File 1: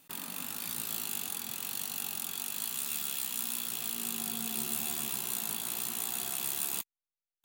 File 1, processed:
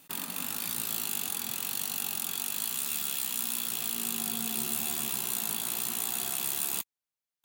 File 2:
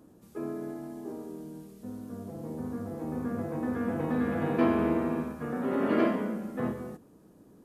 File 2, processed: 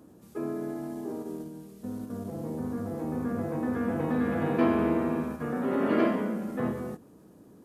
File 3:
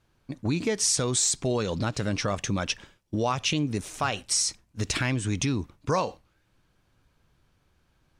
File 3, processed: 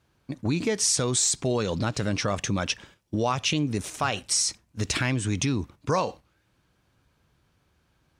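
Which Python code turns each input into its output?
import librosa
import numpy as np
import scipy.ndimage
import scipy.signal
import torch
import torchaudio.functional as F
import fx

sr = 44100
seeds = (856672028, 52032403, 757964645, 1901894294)

p1 = scipy.signal.sosfilt(scipy.signal.butter(2, 50.0, 'highpass', fs=sr, output='sos'), x)
p2 = fx.level_steps(p1, sr, step_db=21)
y = p1 + (p2 * librosa.db_to_amplitude(-2.0))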